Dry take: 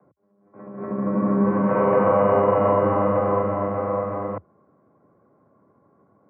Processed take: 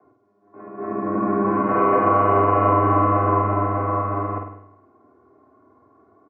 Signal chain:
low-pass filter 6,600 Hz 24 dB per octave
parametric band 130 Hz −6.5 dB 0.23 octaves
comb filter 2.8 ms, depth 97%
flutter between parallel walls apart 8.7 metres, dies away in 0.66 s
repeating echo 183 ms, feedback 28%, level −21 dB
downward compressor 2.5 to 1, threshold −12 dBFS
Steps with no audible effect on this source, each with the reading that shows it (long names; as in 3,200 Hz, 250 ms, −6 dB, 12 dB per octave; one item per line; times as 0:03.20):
low-pass filter 6,600 Hz: nothing at its input above 1,600 Hz